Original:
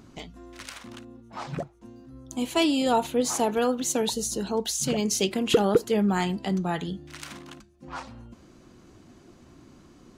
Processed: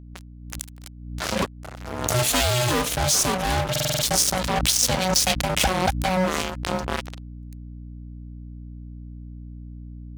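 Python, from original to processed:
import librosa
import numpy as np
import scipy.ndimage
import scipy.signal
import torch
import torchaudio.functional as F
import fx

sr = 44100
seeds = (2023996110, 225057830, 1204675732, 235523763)

y = fx.doppler_pass(x, sr, speed_mps=40, closest_m=19.0, pass_at_s=2.12)
y = y * np.sin(2.0 * np.pi * 370.0 * np.arange(len(y)) / sr)
y = fx.dynamic_eq(y, sr, hz=1200.0, q=0.79, threshold_db=-48.0, ratio=4.0, max_db=-4)
y = fx.fuzz(y, sr, gain_db=41.0, gate_db=-46.0)
y = scipy.signal.sosfilt(scipy.signal.butter(4, 50.0, 'highpass', fs=sr, output='sos'), y)
y = fx.add_hum(y, sr, base_hz=60, snr_db=15)
y = fx.rider(y, sr, range_db=4, speed_s=0.5)
y = fx.high_shelf(y, sr, hz=2800.0, db=7.5)
y = fx.buffer_glitch(y, sr, at_s=(3.71,), block=2048, repeats=6)
y = fx.pre_swell(y, sr, db_per_s=56.0)
y = y * 10.0 ** (-3.5 / 20.0)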